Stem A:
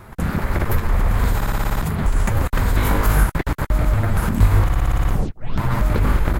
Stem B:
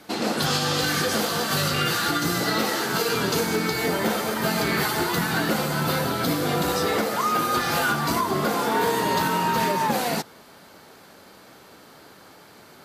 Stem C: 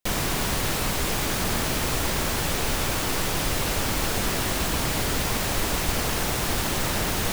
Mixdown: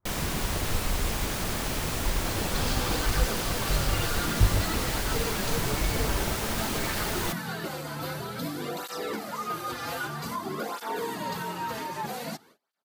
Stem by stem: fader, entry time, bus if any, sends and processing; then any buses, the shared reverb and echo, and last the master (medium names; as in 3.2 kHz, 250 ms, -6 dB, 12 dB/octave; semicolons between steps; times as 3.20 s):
-6.0 dB, 0.00 s, no send, reverb removal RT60 1.6 s; low-pass 1.3 kHz; upward expansion 1.5:1, over -26 dBFS
-7.5 dB, 2.15 s, no send, cancelling through-zero flanger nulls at 0.52 Hz, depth 5.5 ms
-5.5 dB, 0.00 s, no send, none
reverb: none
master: gate -54 dBFS, range -25 dB